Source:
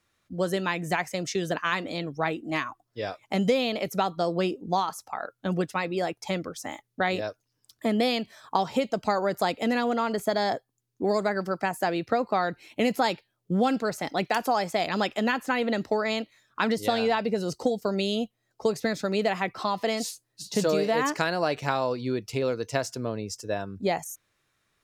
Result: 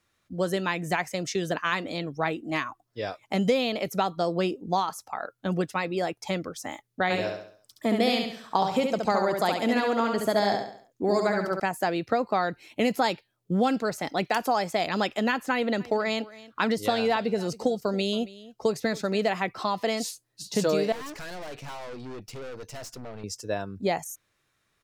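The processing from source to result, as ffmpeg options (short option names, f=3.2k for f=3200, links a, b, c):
-filter_complex "[0:a]asettb=1/sr,asplit=3[a][b][c];[a]atrim=end=7.034[d];[b]atrim=start=7.03:end=11.6,asetpts=PTS-STARTPTS,afade=t=in:d=0.004:c=qsin,afade=t=out:st=4.566:d=0.004:c=qsin,aecho=1:1:69|138|207|276|345:0.596|0.25|0.105|0.0441|0.0185,atrim=end_sample=201537[e];[c]atrim=start=11.596[f];[d][e]acrossfade=d=0.004:c1=hsin:c2=qsin[g];[g][f]acrossfade=d=0.004:c1=qsin:c2=hsin,asplit=3[h][i][j];[h]afade=t=out:st=15.79:d=0.02[k];[i]aecho=1:1:276:0.112,afade=t=in:st=15.79:d=0.02,afade=t=out:st=19.34:d=0.02[l];[j]afade=t=in:st=19.34:d=0.02[m];[k][l][m]amix=inputs=3:normalize=0,asettb=1/sr,asplit=3[n][o][p];[n]atrim=end=20.924[q];[o]atrim=start=20.92:end=23.24,asetpts=PTS-STARTPTS,afade=t=in:d=0.004:c=qsin,afade=t=out:st=2.316:d=0.004:c=qsin,aeval=exprs='(tanh(70.8*val(0)+0.5)-tanh(0.5))/70.8':c=same[r];[p]atrim=start=23.236[s];[q][r]acrossfade=d=0.004:c1=hsin:c2=qsin[t];[t][s]acrossfade=d=0.004:c1=qsin:c2=hsin"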